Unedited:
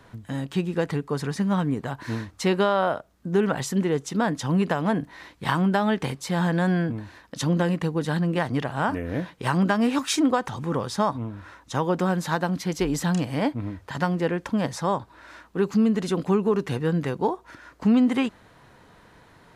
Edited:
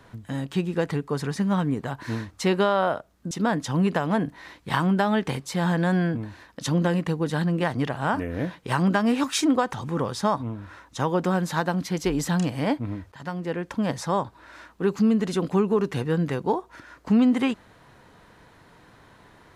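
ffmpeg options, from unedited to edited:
ffmpeg -i in.wav -filter_complex "[0:a]asplit=3[link_01][link_02][link_03];[link_01]atrim=end=3.312[link_04];[link_02]atrim=start=4.058:end=13.87,asetpts=PTS-STARTPTS,afade=type=out:start_time=9.808:duration=0.004:curve=hsin:silence=0.237137[link_05];[link_03]atrim=start=13.87,asetpts=PTS-STARTPTS,afade=type=in:duration=0.82:silence=0.237137[link_06];[link_05][link_06]concat=n=2:v=0:a=1[link_07];[link_04][link_07]acrossfade=duration=0.004:curve1=hsin:curve2=hsin" out.wav

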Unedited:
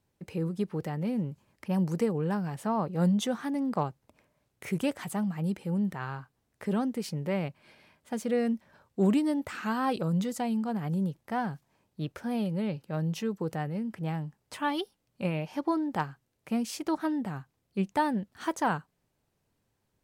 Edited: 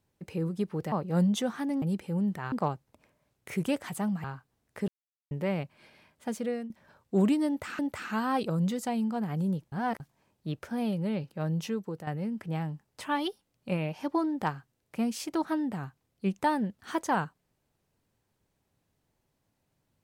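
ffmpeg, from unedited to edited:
ffmpeg -i in.wav -filter_complex "[0:a]asplit=12[link_01][link_02][link_03][link_04][link_05][link_06][link_07][link_08][link_09][link_10][link_11][link_12];[link_01]atrim=end=0.922[link_13];[link_02]atrim=start=2.768:end=3.672[link_14];[link_03]atrim=start=5.388:end=6.092[link_15];[link_04]atrim=start=3.668:end=5.392[link_16];[link_05]atrim=start=6.088:end=6.73,asetpts=PTS-STARTPTS,afade=type=out:start_time=0.638:duration=0.004:curve=hsin[link_17];[link_06]atrim=start=6.73:end=7.16,asetpts=PTS-STARTPTS,volume=0[link_18];[link_07]atrim=start=7.16:end=8.55,asetpts=PTS-STARTPTS,afade=type=in:duration=0.004:curve=hsin,afade=type=out:start_time=1:duration=0.39:silence=0.177828[link_19];[link_08]atrim=start=8.55:end=9.642,asetpts=PTS-STARTPTS,afade=type=in:duration=0.004:curve=hsin:silence=0.177828[link_20];[link_09]atrim=start=9.318:end=11.252[link_21];[link_10]atrim=start=11.248:end=11.532,asetpts=PTS-STARTPTS,areverse[link_22];[link_11]atrim=start=11.528:end=13.6,asetpts=PTS-STARTPTS,afade=type=out:start_time=1.682:duration=0.39:silence=0.334965[link_23];[link_12]atrim=start=13.6,asetpts=PTS-STARTPTS,afade=type=in:duration=0.004:curve=hsin:silence=0.334965[link_24];[link_13][link_14]acrossfade=duration=0.004:curve1=hsin:curve2=hsin[link_25];[link_25][link_15]acrossfade=duration=0.004:curve1=hsin:curve2=hsin[link_26];[link_26][link_16]acrossfade=duration=0.004:curve1=hsin:curve2=hsin[link_27];[link_17][link_18][link_19][link_20]concat=n=4:v=0:a=1[link_28];[link_27][link_28]acrossfade=duration=0.004:curve1=hsin:curve2=hsin[link_29];[link_29][link_21]acrossfade=duration=0.004:curve1=hsin:curve2=hsin[link_30];[link_30][link_22]acrossfade=duration=0.004:curve1=hsin:curve2=hsin[link_31];[link_23][link_24]concat=n=2:v=0:a=1[link_32];[link_31][link_32]acrossfade=duration=0.004:curve1=hsin:curve2=hsin" out.wav

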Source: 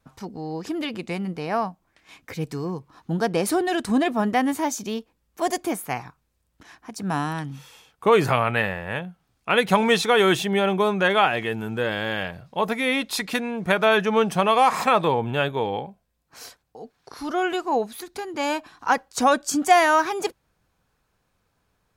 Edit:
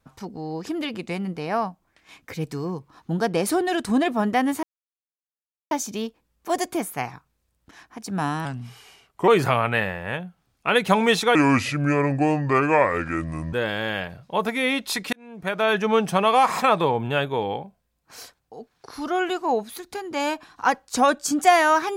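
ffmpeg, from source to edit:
ffmpeg -i in.wav -filter_complex "[0:a]asplit=7[link_01][link_02][link_03][link_04][link_05][link_06][link_07];[link_01]atrim=end=4.63,asetpts=PTS-STARTPTS,afade=type=out:start_time=4.626:duration=0.004:curve=hsin,apad=pad_dur=1.08[link_08];[link_02]atrim=start=4.63:end=7.374,asetpts=PTS-STARTPTS,afade=type=in:duration=0.004:curve=hsin[link_09];[link_03]atrim=start=7.37:end=8.1,asetpts=PTS-STARTPTS,asetrate=38808,aresample=44100[link_10];[link_04]atrim=start=8.096:end=10.174[link_11];[link_05]atrim=start=10.17:end=11.76,asetpts=PTS-STARTPTS,asetrate=32193,aresample=44100,atrim=end_sample=96053,asetpts=PTS-STARTPTS[link_12];[link_06]atrim=start=11.756:end=13.36,asetpts=PTS-STARTPTS,afade=type=out:start_time=1.6:duration=0.004:curve=hsin[link_13];[link_07]atrim=start=13.36,asetpts=PTS-STARTPTS,afade=type=in:duration=0.74[link_14];[link_08][link_09]concat=n=2:v=0:a=1[link_15];[link_15][link_10]acrossfade=duration=0.004:curve1=hsin:curve2=hsin[link_16];[link_16][link_11]acrossfade=duration=0.004:curve1=hsin:curve2=hsin[link_17];[link_17][link_12]acrossfade=duration=0.004:curve1=hsin:curve2=hsin[link_18];[link_13][link_14]concat=n=2:v=0:a=1[link_19];[link_18][link_19]acrossfade=duration=0.004:curve1=hsin:curve2=hsin" out.wav

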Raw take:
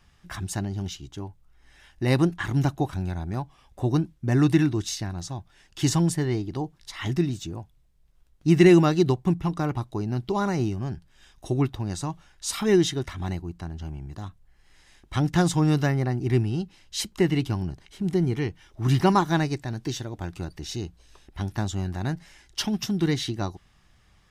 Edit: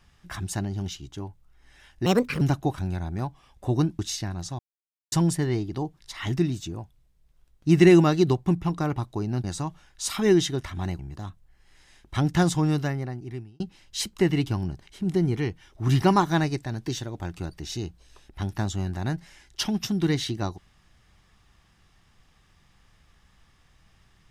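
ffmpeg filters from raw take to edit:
ffmpeg -i in.wav -filter_complex "[0:a]asplit=9[link_01][link_02][link_03][link_04][link_05][link_06][link_07][link_08][link_09];[link_01]atrim=end=2.064[link_10];[link_02]atrim=start=2.06:end=2.56,asetpts=PTS-STARTPTS,asetrate=63063,aresample=44100[link_11];[link_03]atrim=start=2.556:end=4.142[link_12];[link_04]atrim=start=4.778:end=5.38,asetpts=PTS-STARTPTS,afade=type=out:start_time=0.598:duration=0.004:curve=hsin[link_13];[link_05]atrim=start=5.38:end=5.91,asetpts=PTS-STARTPTS,volume=0[link_14];[link_06]atrim=start=5.91:end=10.232,asetpts=PTS-STARTPTS,afade=type=in:duration=0.004:curve=hsin[link_15];[link_07]atrim=start=11.868:end=13.422[link_16];[link_08]atrim=start=13.978:end=16.59,asetpts=PTS-STARTPTS,afade=type=out:start_time=1.432:duration=1.18[link_17];[link_09]atrim=start=16.59,asetpts=PTS-STARTPTS,afade=type=in:duration=0.004:curve=hsin[link_18];[link_10][link_11]acrossfade=duration=0.004:curve1=hsin:curve2=hsin[link_19];[link_19][link_12]acrossfade=duration=0.004:curve1=hsin:curve2=hsin[link_20];[link_13][link_14][link_15]concat=n=3:v=0:a=1[link_21];[link_20][link_21]acrossfade=duration=0.004:curve1=hsin:curve2=hsin[link_22];[link_22][link_16]acrossfade=duration=0.004:curve1=hsin:curve2=hsin[link_23];[link_17][link_18]concat=n=2:v=0:a=1[link_24];[link_23][link_24]acrossfade=duration=0.004:curve1=hsin:curve2=hsin" out.wav

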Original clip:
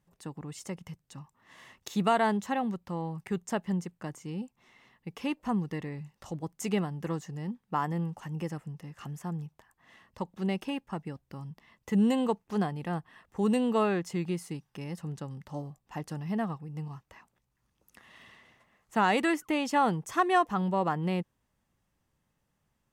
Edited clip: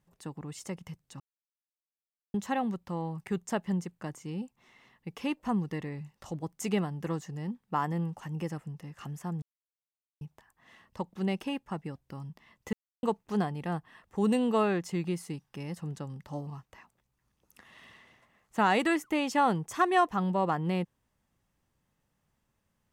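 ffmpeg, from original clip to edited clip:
ffmpeg -i in.wav -filter_complex "[0:a]asplit=7[link_01][link_02][link_03][link_04][link_05][link_06][link_07];[link_01]atrim=end=1.2,asetpts=PTS-STARTPTS,afade=type=out:start_time=1.196:duration=0.004:curve=hsin[link_08];[link_02]atrim=start=1.2:end=2.34,asetpts=PTS-STARTPTS,volume=0[link_09];[link_03]atrim=start=2.34:end=9.42,asetpts=PTS-STARTPTS,afade=type=in:duration=0.004:curve=hsin,afade=type=out:start_time=7.076:duration=0.004:curve=hsin,apad=pad_dur=0.79[link_10];[link_04]atrim=start=9.42:end=11.94,asetpts=PTS-STARTPTS,afade=type=in:duration=0.004:curve=hsin,afade=type=out:start_time=2.516:duration=0.004:curve=hsin[link_11];[link_05]atrim=start=11.94:end=12.24,asetpts=PTS-STARTPTS,volume=0[link_12];[link_06]atrim=start=12.24:end=15.682,asetpts=PTS-STARTPTS,afade=type=in:duration=0.004:curve=hsin[link_13];[link_07]atrim=start=16.848[link_14];[link_08][link_09][link_10][link_11][link_12][link_13]concat=n=6:v=0:a=1[link_15];[link_15][link_14]acrossfade=duration=0.004:curve1=hsin:curve2=hsin" out.wav

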